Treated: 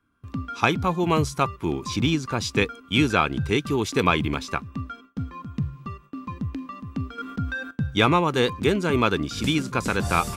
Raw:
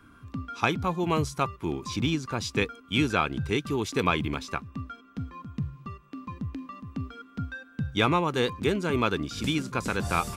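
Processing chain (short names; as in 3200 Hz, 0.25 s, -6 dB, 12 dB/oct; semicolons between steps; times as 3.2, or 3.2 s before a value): gate with hold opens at -43 dBFS; 7.18–7.71 fast leveller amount 50%; gain +4.5 dB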